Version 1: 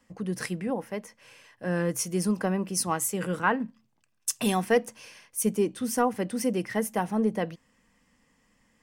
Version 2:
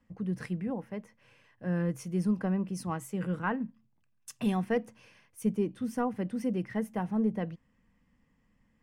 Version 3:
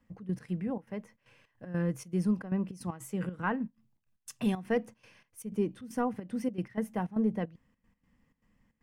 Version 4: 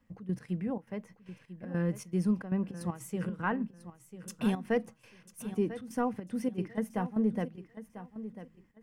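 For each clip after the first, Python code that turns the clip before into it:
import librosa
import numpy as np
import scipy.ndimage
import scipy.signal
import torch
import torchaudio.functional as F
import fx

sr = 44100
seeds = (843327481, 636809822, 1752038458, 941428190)

y1 = fx.bass_treble(x, sr, bass_db=10, treble_db=-11)
y1 = y1 * librosa.db_to_amplitude(-8.0)
y2 = fx.step_gate(y1, sr, bpm=155, pattern='xx.x.xxx.xxx.', floor_db=-12.0, edge_ms=4.5)
y3 = fx.echo_feedback(y2, sr, ms=995, feedback_pct=22, wet_db=-13)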